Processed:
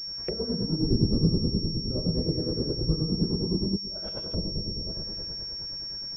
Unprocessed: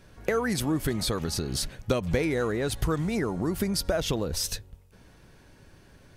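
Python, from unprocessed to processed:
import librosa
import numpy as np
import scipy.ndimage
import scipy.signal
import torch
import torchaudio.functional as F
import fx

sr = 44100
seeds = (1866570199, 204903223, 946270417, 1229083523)

p1 = fx.low_shelf(x, sr, hz=410.0, db=8.0, at=(0.79, 1.29))
p2 = p1 + fx.echo_wet_lowpass(p1, sr, ms=453, feedback_pct=32, hz=400.0, wet_db=-9.0, dry=0)
p3 = fx.rev_plate(p2, sr, seeds[0], rt60_s=2.0, hf_ratio=0.75, predelay_ms=0, drr_db=-6.5)
p4 = fx.over_compress(p3, sr, threshold_db=-28.0, ratio=-0.5, at=(3.75, 4.33), fade=0.02)
p5 = fx.env_lowpass_down(p4, sr, base_hz=320.0, full_db=-22.5)
p6 = fx.harmonic_tremolo(p5, sr, hz=9.6, depth_pct=70, crossover_hz=1900.0)
p7 = fx.pwm(p6, sr, carrier_hz=5500.0)
y = p7 * librosa.db_to_amplitude(-2.5)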